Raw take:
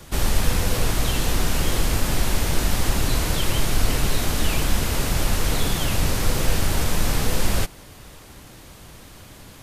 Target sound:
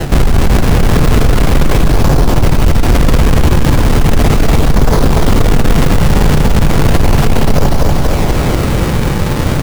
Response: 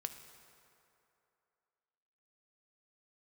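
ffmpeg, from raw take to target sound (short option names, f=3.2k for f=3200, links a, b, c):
-filter_complex "[0:a]lowpass=1.1k,areverse,acompressor=threshold=-27dB:ratio=6,areverse,acrusher=samples=37:mix=1:aa=0.000001:lfo=1:lforange=59.2:lforate=0.36,aecho=1:1:240|480|720|960|1200|1440:0.668|0.314|0.148|0.0694|0.0326|0.0153,asoftclip=type=tanh:threshold=-29.5dB[a];[1:a]atrim=start_sample=2205[b];[a][b]afir=irnorm=-1:irlink=0,alimiter=level_in=35dB:limit=-1dB:release=50:level=0:latency=1,volume=-1dB"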